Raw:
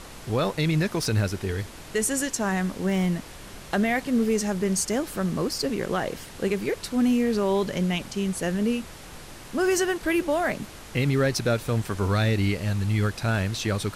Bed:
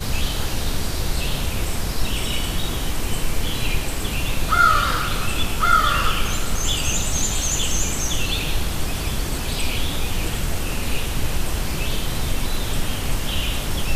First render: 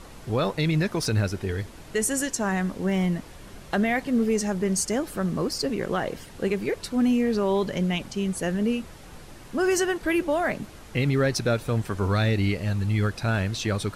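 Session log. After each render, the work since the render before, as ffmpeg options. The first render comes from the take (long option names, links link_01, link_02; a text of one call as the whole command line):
ffmpeg -i in.wav -af "afftdn=noise_reduction=6:noise_floor=-43" out.wav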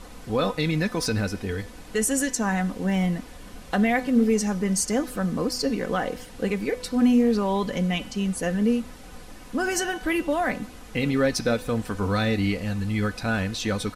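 ffmpeg -i in.wav -af "aecho=1:1:4:0.55,bandreject=frequency=249.7:width_type=h:width=4,bandreject=frequency=499.4:width_type=h:width=4,bandreject=frequency=749.1:width_type=h:width=4,bandreject=frequency=998.8:width_type=h:width=4,bandreject=frequency=1248.5:width_type=h:width=4,bandreject=frequency=1498.2:width_type=h:width=4,bandreject=frequency=1747.9:width_type=h:width=4,bandreject=frequency=1997.6:width_type=h:width=4,bandreject=frequency=2247.3:width_type=h:width=4,bandreject=frequency=2497:width_type=h:width=4,bandreject=frequency=2746.7:width_type=h:width=4,bandreject=frequency=2996.4:width_type=h:width=4,bandreject=frequency=3246.1:width_type=h:width=4,bandreject=frequency=3495.8:width_type=h:width=4,bandreject=frequency=3745.5:width_type=h:width=4,bandreject=frequency=3995.2:width_type=h:width=4,bandreject=frequency=4244.9:width_type=h:width=4,bandreject=frequency=4494.6:width_type=h:width=4,bandreject=frequency=4744.3:width_type=h:width=4,bandreject=frequency=4994:width_type=h:width=4,bandreject=frequency=5243.7:width_type=h:width=4,bandreject=frequency=5493.4:width_type=h:width=4,bandreject=frequency=5743.1:width_type=h:width=4,bandreject=frequency=5992.8:width_type=h:width=4,bandreject=frequency=6242.5:width_type=h:width=4,bandreject=frequency=6492.2:width_type=h:width=4,bandreject=frequency=6741.9:width_type=h:width=4" out.wav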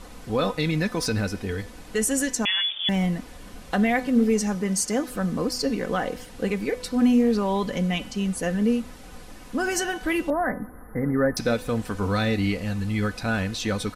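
ffmpeg -i in.wav -filter_complex "[0:a]asettb=1/sr,asplit=3[link_01][link_02][link_03];[link_01]atrim=end=2.454[link_04];[link_02]atrim=start=2.45:end=2.89,asetpts=PTS-STARTPTS,afade=type=in:duration=0.004:curve=qsin,afade=type=out:start_time=0.436:duration=0.004:curve=qsin,lowpass=frequency=3100:width_type=q:width=0.5098,lowpass=frequency=3100:width_type=q:width=0.6013,lowpass=frequency=3100:width_type=q:width=0.9,lowpass=frequency=3100:width_type=q:width=2.563,afreqshift=-3600[link_05];[link_03]atrim=start=2.886[link_06];[link_04][link_05]acrossfade=duration=0.004:curve1=hsin:curve2=qsin[link_07];[link_07][link_06]acrossfade=duration=0.004:curve1=qsin:curve2=hsin,asettb=1/sr,asplit=3[link_08][link_09][link_10];[link_08]atrim=end=4.554[link_11];[link_09]atrim=start=4.55:end=5.11,asetpts=PTS-STARTPTS,afade=type=in:duration=0.004:curve=qsin,afade=type=out:start_time=0.556:duration=0.004:curve=qsin,lowshelf=frequency=69:gain=-12[link_12];[link_10]atrim=start=5.106[link_13];[link_11][link_12]acrossfade=duration=0.004:curve1=hsin:curve2=qsin[link_14];[link_14][link_13]acrossfade=duration=0.004:curve1=qsin:curve2=hsin,asettb=1/sr,asplit=3[link_15][link_16][link_17];[link_15]atrim=end=10.304[link_18];[link_16]atrim=start=10.3:end=11.37,asetpts=PTS-STARTPTS,afade=type=in:duration=0.004:curve=qsin,afade=type=out:start_time=1.066:duration=0.004:curve=qsin,asuperstop=centerf=4700:order=20:qfactor=0.57[link_19];[link_17]atrim=start=11.366[link_20];[link_18][link_19]acrossfade=duration=0.004:curve1=hsin:curve2=qsin[link_21];[link_21][link_20]acrossfade=duration=0.004:curve1=qsin:curve2=hsin" out.wav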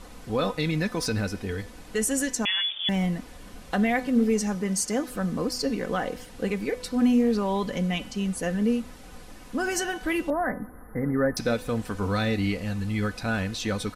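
ffmpeg -i in.wav -af "volume=-2dB" out.wav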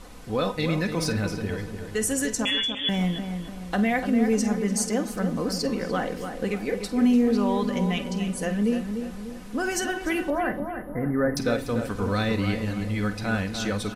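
ffmpeg -i in.wav -filter_complex "[0:a]asplit=2[link_01][link_02];[link_02]adelay=49,volume=-14dB[link_03];[link_01][link_03]amix=inputs=2:normalize=0,asplit=2[link_04][link_05];[link_05]adelay=295,lowpass=frequency=2000:poles=1,volume=-7dB,asplit=2[link_06][link_07];[link_07]adelay=295,lowpass=frequency=2000:poles=1,volume=0.48,asplit=2[link_08][link_09];[link_09]adelay=295,lowpass=frequency=2000:poles=1,volume=0.48,asplit=2[link_10][link_11];[link_11]adelay=295,lowpass=frequency=2000:poles=1,volume=0.48,asplit=2[link_12][link_13];[link_13]adelay=295,lowpass=frequency=2000:poles=1,volume=0.48,asplit=2[link_14][link_15];[link_15]adelay=295,lowpass=frequency=2000:poles=1,volume=0.48[link_16];[link_04][link_06][link_08][link_10][link_12][link_14][link_16]amix=inputs=7:normalize=0" out.wav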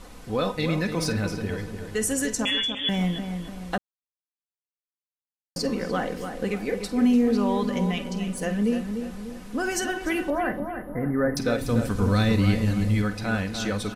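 ffmpeg -i in.wav -filter_complex "[0:a]asettb=1/sr,asplit=3[link_01][link_02][link_03];[link_01]atrim=end=7.914[link_04];[link_02]atrim=start=7.91:end=8.42,asetpts=PTS-STARTPTS,afade=type=in:duration=0.004:curve=qsin,afade=type=out:start_time=0.506:duration=0.004:curve=qsin,aeval=exprs='if(lt(val(0),0),0.708*val(0),val(0))':channel_layout=same[link_05];[link_03]atrim=start=8.416[link_06];[link_04][link_05]acrossfade=duration=0.004:curve1=hsin:curve2=qsin[link_07];[link_07][link_06]acrossfade=duration=0.004:curve1=qsin:curve2=hsin,asettb=1/sr,asplit=3[link_08][link_09][link_10];[link_08]atrim=end=11.614[link_11];[link_09]atrim=start=11.61:end=13.02,asetpts=PTS-STARTPTS,afade=type=in:duration=0.004:curve=qsin,afade=type=out:start_time=1.406:duration=0.004:curve=qsin,bass=frequency=250:gain=7,treble=frequency=4000:gain=5[link_12];[link_10]atrim=start=13.016[link_13];[link_11][link_12]acrossfade=duration=0.004:curve1=hsin:curve2=qsin[link_14];[link_14][link_13]acrossfade=duration=0.004:curve1=qsin:curve2=hsin,asplit=3[link_15][link_16][link_17];[link_15]atrim=end=3.78,asetpts=PTS-STARTPTS,afade=type=out:start_time=3.776:duration=0.004:curve=hsin[link_18];[link_16]atrim=start=3.78:end=5.56,asetpts=PTS-STARTPTS,volume=0[link_19];[link_17]atrim=start=5.56,asetpts=PTS-STARTPTS,afade=type=in:duration=0.004:curve=hsin[link_20];[link_18][link_19][link_20]concat=n=3:v=0:a=1" out.wav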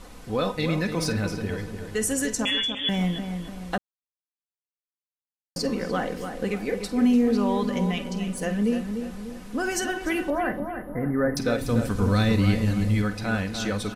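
ffmpeg -i in.wav -af anull out.wav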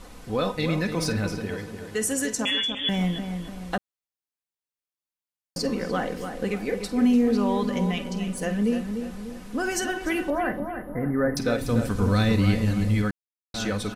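ffmpeg -i in.wav -filter_complex "[0:a]asettb=1/sr,asplit=3[link_01][link_02][link_03];[link_01]atrim=end=1.404[link_04];[link_02]atrim=start=1.4:end=2.69,asetpts=PTS-STARTPTS,afade=type=in:duration=0.004:curve=qsin,afade=type=out:start_time=1.286:duration=0.004:curve=qsin,highpass=frequency=140:poles=1[link_05];[link_03]atrim=start=2.686[link_06];[link_04][link_05]acrossfade=duration=0.004:curve1=hsin:curve2=qsin[link_07];[link_07][link_06]acrossfade=duration=0.004:curve1=qsin:curve2=hsin,asplit=3[link_08][link_09][link_10];[link_08]atrim=end=13.11,asetpts=PTS-STARTPTS,afade=type=out:start_time=13.106:duration=0.004:curve=hsin[link_11];[link_09]atrim=start=13.11:end=13.54,asetpts=PTS-STARTPTS,volume=0[link_12];[link_10]atrim=start=13.54,asetpts=PTS-STARTPTS,afade=type=in:duration=0.004:curve=hsin[link_13];[link_11][link_12][link_13]concat=n=3:v=0:a=1" out.wav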